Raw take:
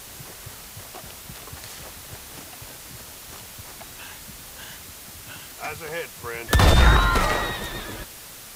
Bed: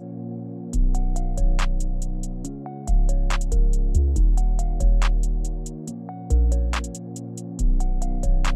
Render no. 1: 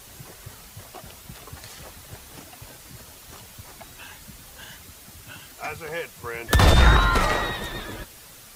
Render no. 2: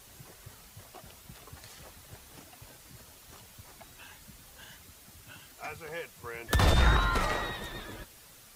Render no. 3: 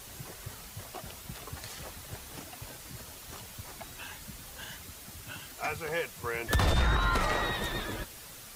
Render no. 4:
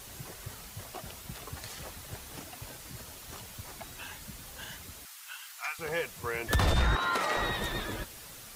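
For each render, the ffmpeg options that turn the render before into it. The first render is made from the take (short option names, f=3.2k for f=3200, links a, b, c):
-af "afftdn=nr=6:nf=-42"
-af "volume=-8dB"
-af "acontrast=72,alimiter=limit=-17.5dB:level=0:latency=1:release=351"
-filter_complex "[0:a]asettb=1/sr,asplit=3[a][b][c];[a]atrim=end=5.054[d];[b]atrim=start=5.05:end=5.79,asetpts=PTS-STARTPTS,afade=t=in:d=0.004:c=qsin,afade=t=out:st=0.736:d=0.004:c=qsin,highpass=f=1k:w=0.5412,highpass=f=1k:w=1.3066[e];[c]atrim=start=5.786[f];[d][e]acrossfade=d=0.004:c1=hsin:c2=qsin[g];[g][f]acrossfade=d=0.004:c1=qsin:c2=hsin,asettb=1/sr,asplit=3[h][i][j];[h]atrim=end=6.954[k];[i]atrim=start=6.95:end=7.37,asetpts=PTS-STARTPTS,afade=t=in:d=0.004:c=qsin,afade=t=out:st=0.416:d=0.004:c=qsin,highpass=300[l];[j]atrim=start=7.366[m];[k][l]acrossfade=d=0.004:c1=hsin:c2=qsin[n];[n][m]acrossfade=d=0.004:c1=qsin:c2=hsin"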